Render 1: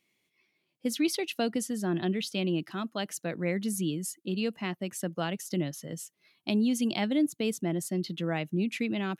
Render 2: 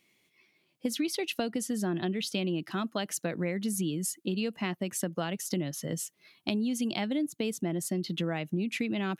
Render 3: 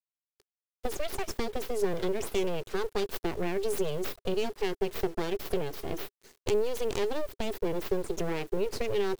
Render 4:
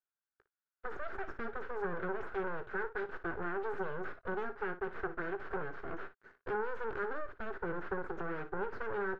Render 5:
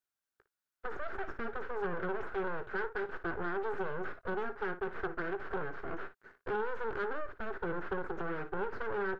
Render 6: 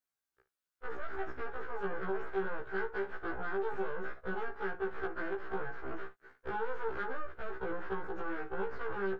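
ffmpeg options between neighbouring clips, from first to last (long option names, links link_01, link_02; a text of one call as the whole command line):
ffmpeg -i in.wav -af "acompressor=threshold=-34dB:ratio=6,volume=6dB" out.wav
ffmpeg -i in.wav -af "aeval=exprs='abs(val(0))':channel_layout=same,acrusher=bits=8:mix=0:aa=0.000001,equalizer=frequency=400:width=3.1:gain=12" out.wav
ffmpeg -i in.wav -filter_complex "[0:a]aeval=exprs='(tanh(22.4*val(0)+0.4)-tanh(0.4))/22.4':channel_layout=same,lowpass=frequency=1500:width_type=q:width=6.2,asplit=2[link_01][link_02];[link_02]aecho=0:1:18|57:0.188|0.211[link_03];[link_01][link_03]amix=inputs=2:normalize=0,volume=-3.5dB" out.wav
ffmpeg -i in.wav -af "asoftclip=type=tanh:threshold=-28dB,volume=2.5dB" out.wav
ffmpeg -i in.wav -af "afftfilt=real='re*1.73*eq(mod(b,3),0)':imag='im*1.73*eq(mod(b,3),0)':win_size=2048:overlap=0.75,volume=1dB" out.wav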